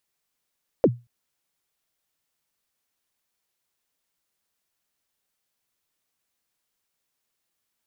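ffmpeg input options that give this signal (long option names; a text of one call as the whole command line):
ffmpeg -f lavfi -i "aevalsrc='0.355*pow(10,-3*t/0.25)*sin(2*PI*(590*0.051/log(120/590)*(exp(log(120/590)*min(t,0.051)/0.051)-1)+120*max(t-0.051,0)))':duration=0.23:sample_rate=44100" out.wav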